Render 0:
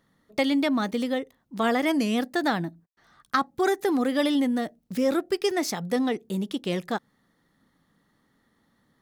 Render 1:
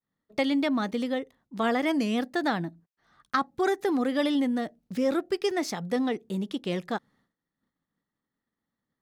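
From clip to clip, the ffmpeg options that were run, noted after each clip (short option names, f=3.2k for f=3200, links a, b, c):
-af "agate=range=-33dB:threshold=-56dB:ratio=3:detection=peak,highshelf=f=9.1k:g=-10,volume=-2dB"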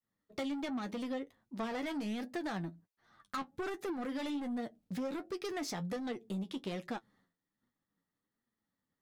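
-af "asoftclip=type=tanh:threshold=-27.5dB,flanger=delay=8.1:depth=3.5:regen=41:speed=1.3:shape=triangular,acompressor=threshold=-36dB:ratio=6,volume=1dB"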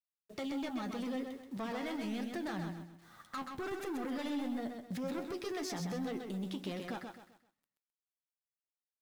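-af "alimiter=level_in=17.5dB:limit=-24dB:level=0:latency=1:release=48,volume=-17.5dB,acrusher=bits=11:mix=0:aa=0.000001,aecho=1:1:130|260|390|520:0.531|0.181|0.0614|0.0209,volume=7dB"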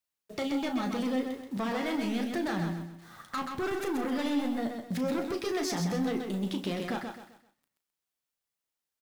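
-filter_complex "[0:a]asplit=2[a][b];[b]adelay=35,volume=-9dB[c];[a][c]amix=inputs=2:normalize=0,volume=7dB"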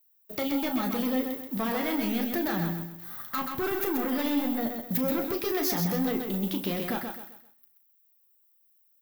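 -af "aexciter=amount=10.2:drive=7.2:freq=12k,volume=2dB"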